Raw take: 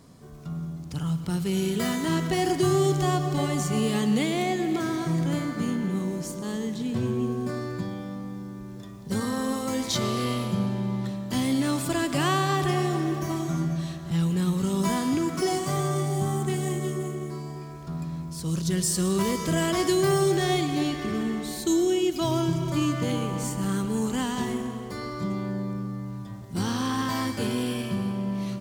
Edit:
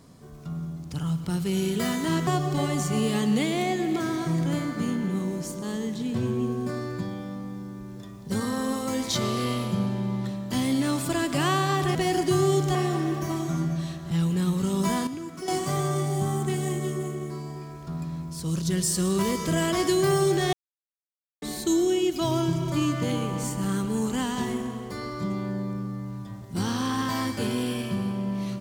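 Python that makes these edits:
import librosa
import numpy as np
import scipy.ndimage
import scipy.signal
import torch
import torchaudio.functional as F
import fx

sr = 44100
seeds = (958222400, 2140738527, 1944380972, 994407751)

y = fx.edit(x, sr, fx.move(start_s=2.27, length_s=0.8, to_s=12.75),
    fx.clip_gain(start_s=15.07, length_s=0.41, db=-10.0),
    fx.silence(start_s=20.53, length_s=0.89), tone=tone)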